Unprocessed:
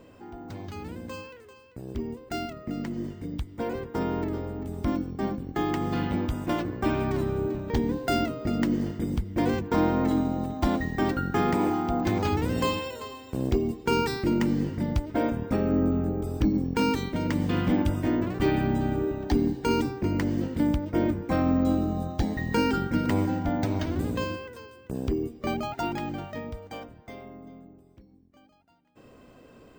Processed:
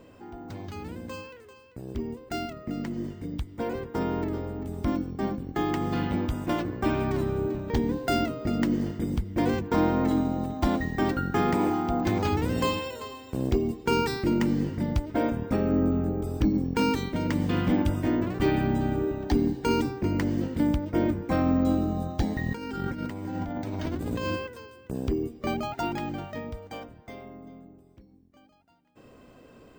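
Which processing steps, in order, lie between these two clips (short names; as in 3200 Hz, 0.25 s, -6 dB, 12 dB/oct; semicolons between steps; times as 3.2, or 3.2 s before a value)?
22.36–24.47 negative-ratio compressor -32 dBFS, ratio -1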